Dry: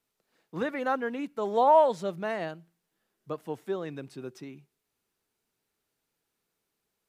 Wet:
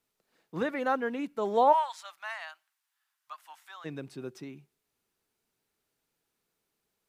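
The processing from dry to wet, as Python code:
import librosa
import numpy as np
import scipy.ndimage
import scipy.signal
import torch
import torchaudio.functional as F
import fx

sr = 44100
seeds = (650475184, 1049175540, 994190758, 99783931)

y = fx.cheby2_highpass(x, sr, hz=470.0, order=4, stop_db=40, at=(1.72, 3.84), fade=0.02)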